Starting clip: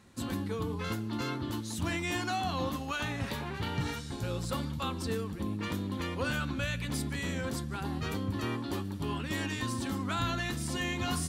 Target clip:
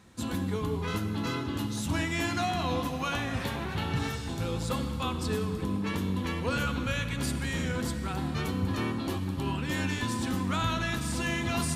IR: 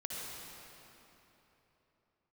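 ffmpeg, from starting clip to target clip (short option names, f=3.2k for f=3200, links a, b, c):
-filter_complex "[0:a]asetrate=42336,aresample=44100,asplit=2[a][b];[1:a]atrim=start_sample=2205[c];[b][c]afir=irnorm=-1:irlink=0,volume=-6dB[d];[a][d]amix=inputs=2:normalize=0"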